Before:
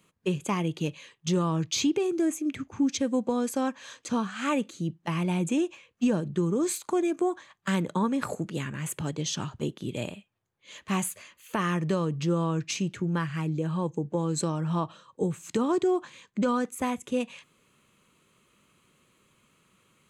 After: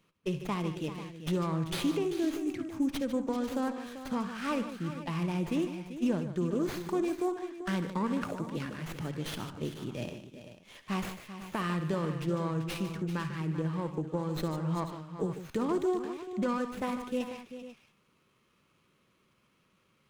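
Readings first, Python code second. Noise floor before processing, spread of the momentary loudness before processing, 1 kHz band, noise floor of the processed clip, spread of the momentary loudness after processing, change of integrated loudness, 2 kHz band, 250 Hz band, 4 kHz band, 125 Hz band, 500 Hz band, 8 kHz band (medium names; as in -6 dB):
-71 dBFS, 8 LU, -4.5 dB, -71 dBFS, 8 LU, -4.5 dB, -4.5 dB, -4.5 dB, -6.0 dB, -4.5 dB, -4.5 dB, -13.5 dB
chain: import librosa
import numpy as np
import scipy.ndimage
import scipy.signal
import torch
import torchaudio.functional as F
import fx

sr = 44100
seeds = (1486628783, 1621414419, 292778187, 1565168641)

y = fx.echo_multitap(x, sr, ms=(56, 69, 149, 389, 493), db=(-17.5, -15.5, -11.5, -12.0, -14.0))
y = fx.running_max(y, sr, window=5)
y = y * 10.0 ** (-5.0 / 20.0)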